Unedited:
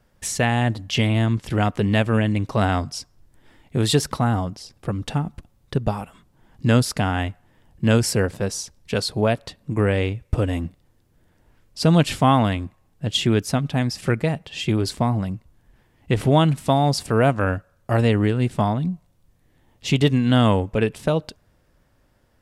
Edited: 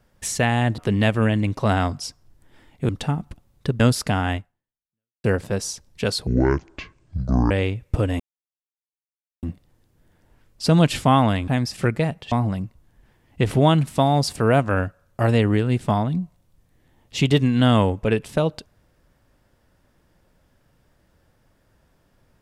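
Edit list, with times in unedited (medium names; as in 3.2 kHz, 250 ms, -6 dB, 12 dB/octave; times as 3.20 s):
0.78–1.70 s: delete
3.81–4.96 s: delete
5.87–6.70 s: delete
7.26–8.14 s: fade out exponential
9.17–9.90 s: speed 59%
10.59 s: insert silence 1.23 s
12.64–13.72 s: delete
14.56–15.02 s: delete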